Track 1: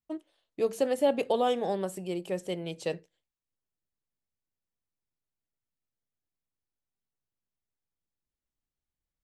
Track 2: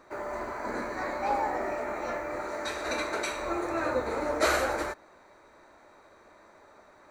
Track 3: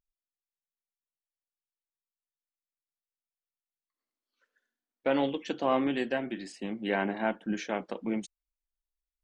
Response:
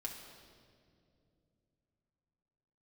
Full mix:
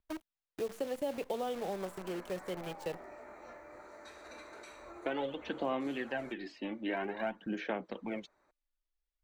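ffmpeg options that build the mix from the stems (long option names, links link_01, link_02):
-filter_complex "[0:a]acrusher=bits=7:dc=4:mix=0:aa=0.000001,volume=-4.5dB[link_01];[1:a]alimiter=limit=-23.5dB:level=0:latency=1:release=53,adelay=1400,volume=-17.5dB[link_02];[2:a]lowpass=frequency=4500:width=0.5412,lowpass=frequency=4500:width=1.3066,aphaser=in_gain=1:out_gain=1:delay=3.5:decay=0.54:speed=0.52:type=sinusoidal,volume=-1.5dB[link_03];[link_01][link_02][link_03]amix=inputs=3:normalize=0,acrossover=split=330|2600[link_04][link_05][link_06];[link_04]acompressor=threshold=-44dB:ratio=4[link_07];[link_05]acompressor=threshold=-35dB:ratio=4[link_08];[link_06]acompressor=threshold=-53dB:ratio=4[link_09];[link_07][link_08][link_09]amix=inputs=3:normalize=0"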